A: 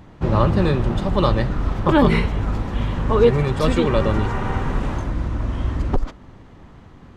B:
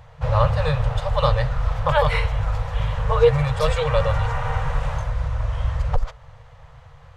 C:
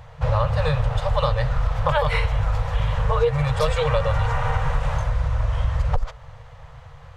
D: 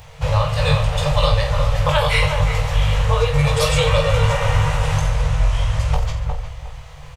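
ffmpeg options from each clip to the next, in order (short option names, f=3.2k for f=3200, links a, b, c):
-af "afftfilt=real='re*(1-between(b*sr/4096,160,450))':imag='im*(1-between(b*sr/4096,160,450))':win_size=4096:overlap=0.75"
-af "acompressor=threshold=-19dB:ratio=6,volume=3dB"
-filter_complex "[0:a]asplit=2[a][b];[b]aecho=0:1:20|48|87.2|142.1|218.9:0.631|0.398|0.251|0.158|0.1[c];[a][c]amix=inputs=2:normalize=0,aexciter=amount=3:drive=4.5:freq=2.2k,asplit=2[d][e];[e]adelay=358,lowpass=f=1.2k:p=1,volume=-4dB,asplit=2[f][g];[g]adelay=358,lowpass=f=1.2k:p=1,volume=0.31,asplit=2[h][i];[i]adelay=358,lowpass=f=1.2k:p=1,volume=0.31,asplit=2[j][k];[k]adelay=358,lowpass=f=1.2k:p=1,volume=0.31[l];[f][h][j][l]amix=inputs=4:normalize=0[m];[d][m]amix=inputs=2:normalize=0"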